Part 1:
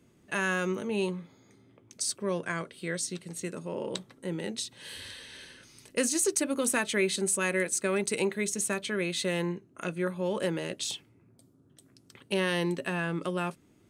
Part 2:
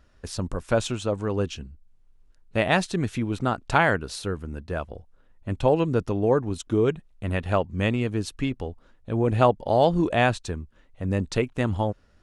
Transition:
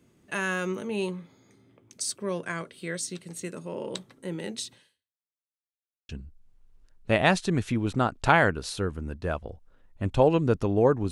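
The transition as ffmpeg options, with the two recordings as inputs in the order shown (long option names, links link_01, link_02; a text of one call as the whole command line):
ffmpeg -i cue0.wav -i cue1.wav -filter_complex "[0:a]apad=whole_dur=11.11,atrim=end=11.11,asplit=2[link_01][link_02];[link_01]atrim=end=5.31,asetpts=PTS-STARTPTS,afade=type=out:start_time=4.74:duration=0.57:curve=exp[link_03];[link_02]atrim=start=5.31:end=6.09,asetpts=PTS-STARTPTS,volume=0[link_04];[1:a]atrim=start=1.55:end=6.57,asetpts=PTS-STARTPTS,afade=type=in:duration=0.004:curve=hsin[link_05];[link_03][link_04][link_05]concat=n=3:v=0:a=1" out.wav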